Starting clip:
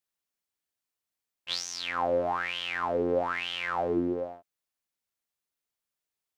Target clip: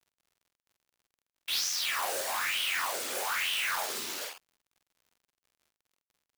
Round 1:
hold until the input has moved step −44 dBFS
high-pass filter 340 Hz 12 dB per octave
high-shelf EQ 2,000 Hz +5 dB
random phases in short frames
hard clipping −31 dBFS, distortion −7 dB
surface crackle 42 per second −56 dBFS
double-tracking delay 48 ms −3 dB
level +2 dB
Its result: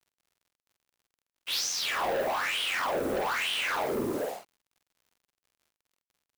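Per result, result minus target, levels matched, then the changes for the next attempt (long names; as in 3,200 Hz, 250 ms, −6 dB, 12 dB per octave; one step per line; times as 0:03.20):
250 Hz band +15.5 dB; hold until the input has moved: distortion −11 dB
change: high-pass filter 1,300 Hz 12 dB per octave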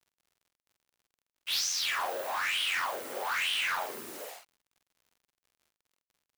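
hold until the input has moved: distortion −11 dB
change: hold until the input has moved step −32.5 dBFS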